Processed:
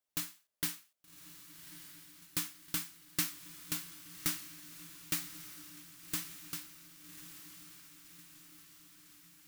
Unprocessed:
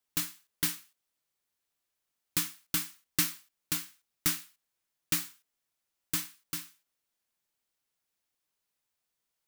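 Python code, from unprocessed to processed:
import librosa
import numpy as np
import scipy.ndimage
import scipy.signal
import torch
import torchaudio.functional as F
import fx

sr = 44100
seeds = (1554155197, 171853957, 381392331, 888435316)

p1 = fx.peak_eq(x, sr, hz=610.0, db=8.0, octaves=0.39)
p2 = p1 + fx.echo_diffused(p1, sr, ms=1181, feedback_pct=60, wet_db=-11, dry=0)
y = F.gain(torch.from_numpy(p2), -5.5).numpy()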